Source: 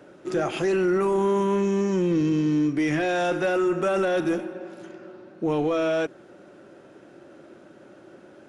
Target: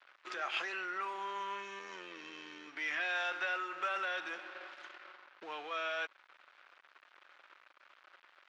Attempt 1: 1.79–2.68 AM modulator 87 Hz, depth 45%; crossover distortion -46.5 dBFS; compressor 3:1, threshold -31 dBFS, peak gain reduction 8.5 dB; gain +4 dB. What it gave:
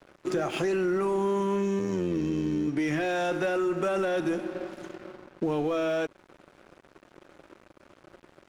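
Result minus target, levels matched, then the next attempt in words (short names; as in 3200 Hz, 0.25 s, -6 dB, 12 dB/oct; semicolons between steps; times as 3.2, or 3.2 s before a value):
2000 Hz band -10.0 dB
1.79–2.68 AM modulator 87 Hz, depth 45%; crossover distortion -46.5 dBFS; compressor 3:1, threshold -31 dBFS, peak gain reduction 8.5 dB; Butterworth band-pass 2200 Hz, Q 0.72; gain +4 dB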